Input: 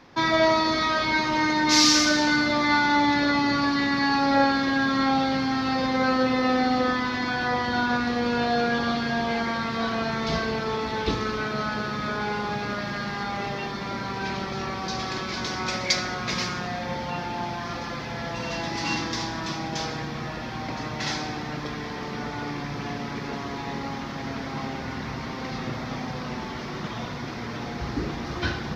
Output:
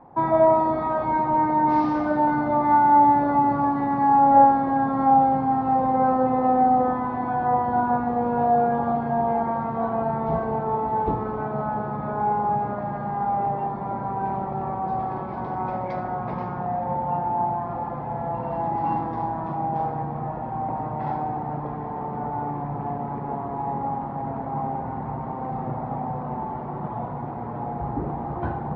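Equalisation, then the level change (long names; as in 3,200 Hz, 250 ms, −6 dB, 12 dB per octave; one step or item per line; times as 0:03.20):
low-pass with resonance 830 Hz, resonance Q 4.4
high-frequency loss of the air 100 metres
parametric band 140 Hz +6 dB 0.65 octaves
−2.0 dB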